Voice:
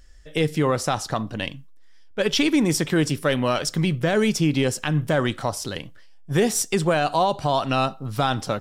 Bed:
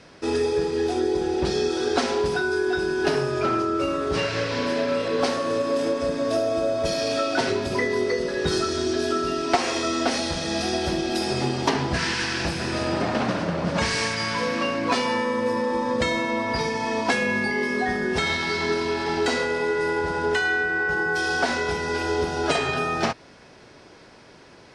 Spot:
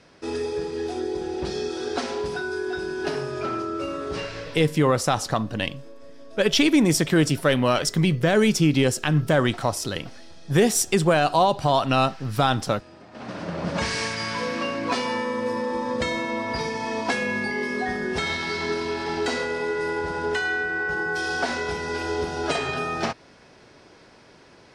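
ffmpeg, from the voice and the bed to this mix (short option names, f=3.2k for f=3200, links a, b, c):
-filter_complex "[0:a]adelay=4200,volume=1.5dB[a];[1:a]volume=15.5dB,afade=t=out:st=4.1:d=0.63:silence=0.125893,afade=t=in:st=13.11:d=0.54:silence=0.0944061[b];[a][b]amix=inputs=2:normalize=0"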